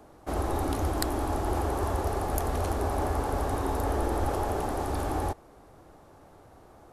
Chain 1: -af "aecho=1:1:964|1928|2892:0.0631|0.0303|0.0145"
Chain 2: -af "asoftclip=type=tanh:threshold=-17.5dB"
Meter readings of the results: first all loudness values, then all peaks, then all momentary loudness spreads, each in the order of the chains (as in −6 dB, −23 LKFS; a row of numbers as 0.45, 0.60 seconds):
−30.0, −31.0 LKFS; −7.5, −17.5 dBFS; 2, 2 LU